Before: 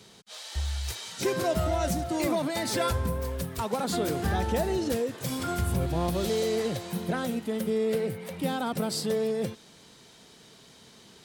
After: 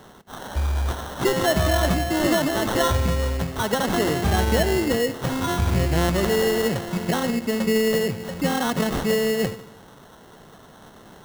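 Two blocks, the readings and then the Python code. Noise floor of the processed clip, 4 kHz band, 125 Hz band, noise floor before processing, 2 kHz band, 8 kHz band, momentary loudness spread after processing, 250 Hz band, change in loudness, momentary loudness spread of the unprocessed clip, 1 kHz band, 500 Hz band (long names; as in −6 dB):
−48 dBFS, +7.5 dB, +7.0 dB, −54 dBFS, +10.5 dB, +5.5 dB, 6 LU, +7.0 dB, +7.0 dB, 6 LU, +6.5 dB, +6.0 dB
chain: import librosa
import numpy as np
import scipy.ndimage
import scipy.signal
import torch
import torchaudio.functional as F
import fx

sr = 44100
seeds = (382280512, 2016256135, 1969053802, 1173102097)

y = fx.echo_filtered(x, sr, ms=72, feedback_pct=61, hz=1200.0, wet_db=-15)
y = fx.sample_hold(y, sr, seeds[0], rate_hz=2400.0, jitter_pct=0)
y = y * librosa.db_to_amplitude(6.5)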